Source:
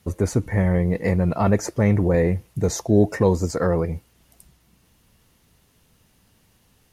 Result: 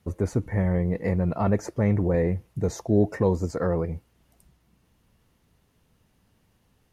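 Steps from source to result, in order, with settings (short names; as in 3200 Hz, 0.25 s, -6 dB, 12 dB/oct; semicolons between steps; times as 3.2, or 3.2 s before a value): high shelf 2600 Hz -8 dB; gain -4 dB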